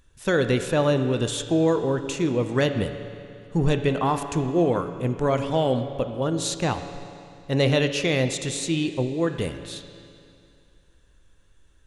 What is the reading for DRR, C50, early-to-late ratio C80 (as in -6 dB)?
7.5 dB, 8.5 dB, 9.5 dB